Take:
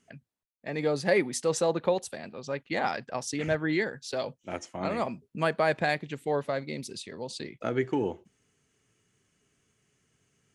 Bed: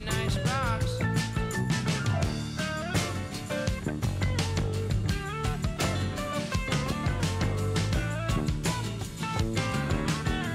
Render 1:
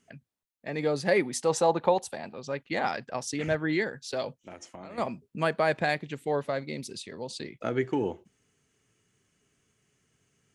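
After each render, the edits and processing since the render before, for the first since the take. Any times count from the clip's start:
0:01.36–0:02.35: parametric band 850 Hz +10 dB 0.52 octaves
0:04.43–0:04.98: downward compressor 10 to 1, threshold −39 dBFS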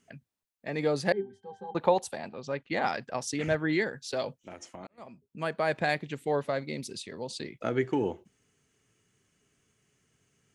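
0:01.12–0:01.75: resonances in every octave G, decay 0.19 s
0:02.28–0:02.82: high-frequency loss of the air 58 metres
0:04.87–0:05.97: fade in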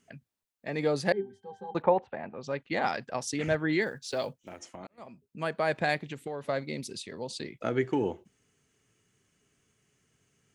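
0:01.82–0:02.41: low-pass filter 2,300 Hz 24 dB per octave
0:03.82–0:04.62: one scale factor per block 7 bits
0:05.97–0:06.49: downward compressor, threshold −32 dBFS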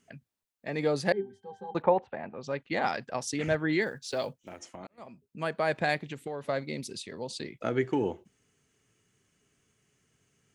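no processing that can be heard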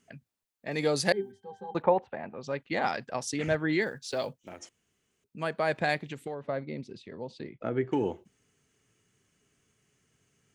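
0:00.71–0:01.32: high-shelf EQ 3,700 Hz +12 dB
0:04.69–0:05.24: fill with room tone
0:06.34–0:07.92: head-to-tape spacing loss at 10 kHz 30 dB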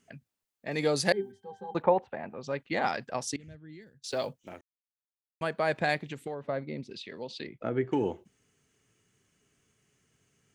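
0:03.36–0:04.04: guitar amp tone stack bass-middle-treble 10-0-1
0:04.61–0:05.41: silence
0:06.91–0:07.47: meter weighting curve D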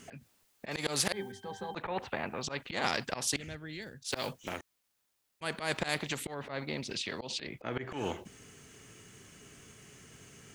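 volume swells 145 ms
every bin compressed towards the loudest bin 2 to 1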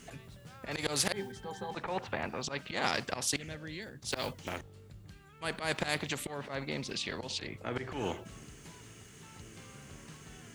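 mix in bed −24 dB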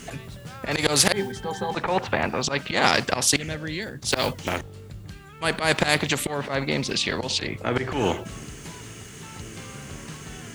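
level +12 dB

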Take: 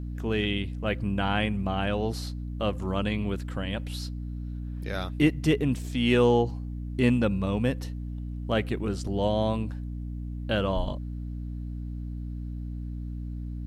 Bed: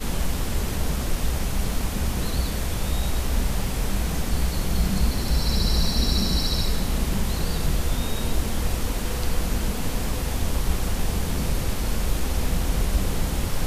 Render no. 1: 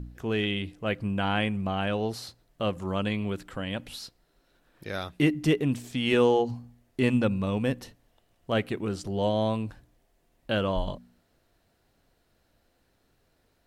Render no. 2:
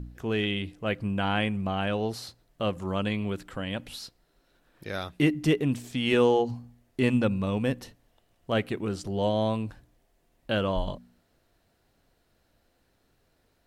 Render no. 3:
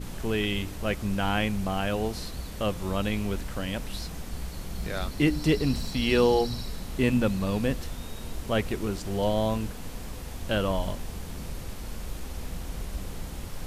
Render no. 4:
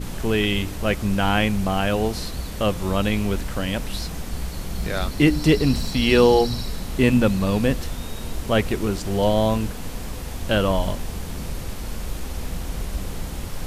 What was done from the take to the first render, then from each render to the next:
hum removal 60 Hz, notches 5
no processing that can be heard
mix in bed −12 dB
level +6.5 dB

